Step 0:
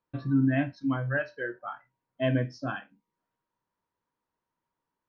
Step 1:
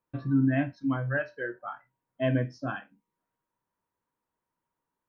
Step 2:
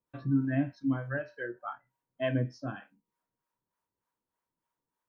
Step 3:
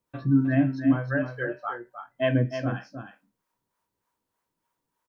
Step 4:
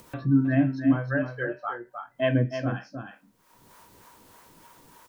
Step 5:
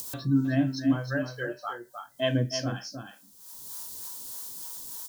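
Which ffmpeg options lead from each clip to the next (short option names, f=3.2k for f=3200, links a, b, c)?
-af "equalizer=f=4.4k:w=1.2:g=-5.5"
-filter_complex "[0:a]acrossover=split=520[a][b];[a]aeval=exprs='val(0)*(1-0.7/2+0.7/2*cos(2*PI*3.3*n/s))':c=same[c];[b]aeval=exprs='val(0)*(1-0.7/2-0.7/2*cos(2*PI*3.3*n/s))':c=same[d];[c][d]amix=inputs=2:normalize=0"
-af "aecho=1:1:310:0.376,volume=6.5dB"
-af "acompressor=mode=upward:threshold=-31dB:ratio=2.5"
-af "aexciter=amount=9.3:drive=4.9:freq=3.5k,volume=-3dB"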